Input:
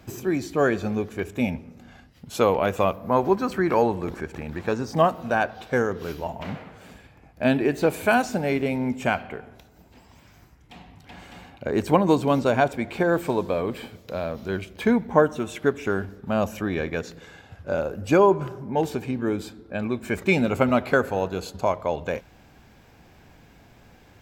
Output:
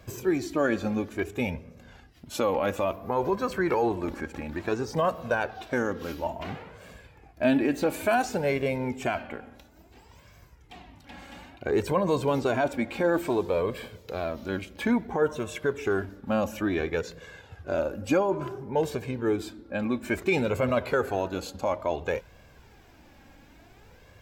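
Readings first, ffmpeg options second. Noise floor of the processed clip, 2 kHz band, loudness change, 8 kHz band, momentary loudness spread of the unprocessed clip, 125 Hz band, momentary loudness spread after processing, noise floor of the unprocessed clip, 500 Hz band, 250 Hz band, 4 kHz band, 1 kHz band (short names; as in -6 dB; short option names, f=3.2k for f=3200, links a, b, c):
-55 dBFS, -4.0 dB, -4.0 dB, -1.5 dB, 12 LU, -5.0 dB, 11 LU, -53 dBFS, -3.5 dB, -4.0 dB, -2.5 dB, -5.0 dB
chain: -af "alimiter=limit=-14dB:level=0:latency=1:release=21,flanger=delay=1.8:depth=1.9:regen=25:speed=0.58:shape=sinusoidal,volume=2.5dB"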